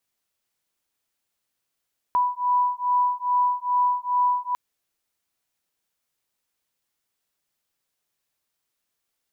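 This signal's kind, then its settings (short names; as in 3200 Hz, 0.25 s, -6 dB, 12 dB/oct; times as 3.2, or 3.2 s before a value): beating tones 986 Hz, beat 2.4 Hz, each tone -22.5 dBFS 2.40 s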